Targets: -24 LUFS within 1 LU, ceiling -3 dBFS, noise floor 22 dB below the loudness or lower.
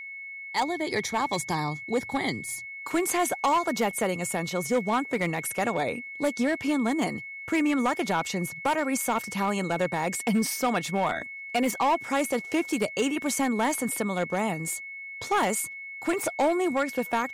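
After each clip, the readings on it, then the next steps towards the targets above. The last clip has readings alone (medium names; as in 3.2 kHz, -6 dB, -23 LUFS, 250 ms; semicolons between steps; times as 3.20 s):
clipped samples 1.2%; clipping level -18.5 dBFS; steady tone 2.2 kHz; tone level -37 dBFS; loudness -27.5 LUFS; peak level -18.5 dBFS; loudness target -24.0 LUFS
-> clip repair -18.5 dBFS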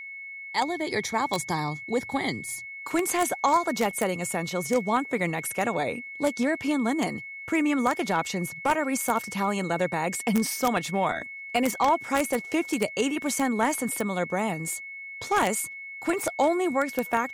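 clipped samples 0.0%; steady tone 2.2 kHz; tone level -37 dBFS
-> band-stop 2.2 kHz, Q 30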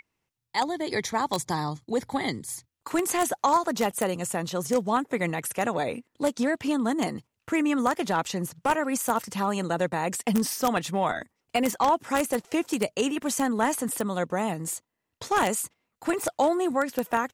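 steady tone not found; loudness -27.0 LUFS; peak level -9.0 dBFS; loudness target -24.0 LUFS
-> trim +3 dB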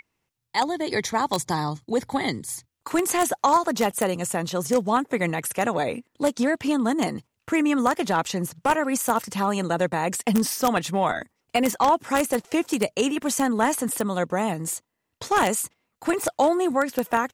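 loudness -24.0 LUFS; peak level -6.0 dBFS; noise floor -79 dBFS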